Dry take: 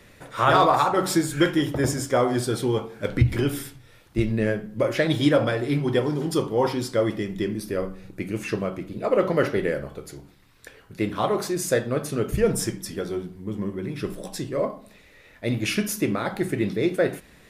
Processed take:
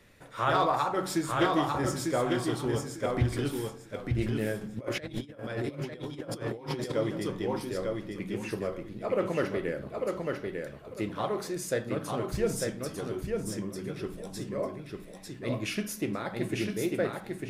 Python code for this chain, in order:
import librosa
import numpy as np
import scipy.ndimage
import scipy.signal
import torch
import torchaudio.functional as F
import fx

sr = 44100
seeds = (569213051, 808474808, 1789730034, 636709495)

y = fx.echo_feedback(x, sr, ms=898, feedback_pct=22, wet_db=-3.5)
y = fx.over_compress(y, sr, threshold_db=-27.0, ratio=-0.5, at=(4.61, 6.92))
y = fx.doppler_dist(y, sr, depth_ms=0.25)
y = F.gain(torch.from_numpy(y), -8.0).numpy()